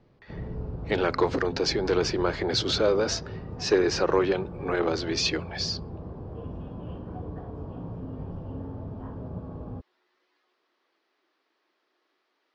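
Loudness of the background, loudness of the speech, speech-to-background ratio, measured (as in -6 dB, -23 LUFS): -38.0 LUFS, -26.5 LUFS, 11.5 dB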